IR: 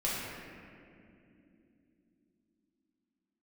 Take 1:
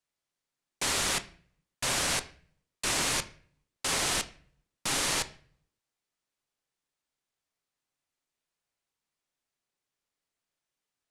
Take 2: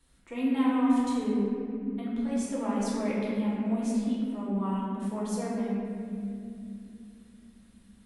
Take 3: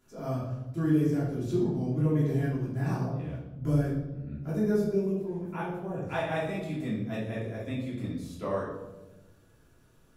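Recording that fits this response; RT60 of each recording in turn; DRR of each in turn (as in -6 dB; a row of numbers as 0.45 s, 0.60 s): 2; 0.50 s, no single decay rate, 1.1 s; 9.5 dB, -7.5 dB, -9.0 dB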